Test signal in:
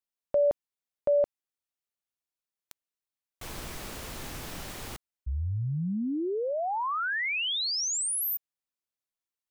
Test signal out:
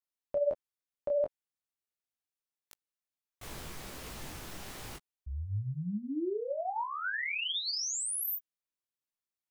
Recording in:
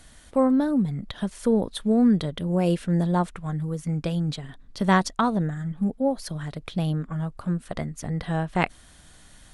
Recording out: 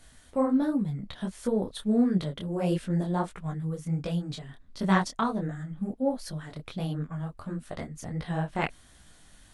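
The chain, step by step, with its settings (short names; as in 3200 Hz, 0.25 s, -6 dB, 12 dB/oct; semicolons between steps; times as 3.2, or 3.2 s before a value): detuned doubles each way 50 cents; gain -1 dB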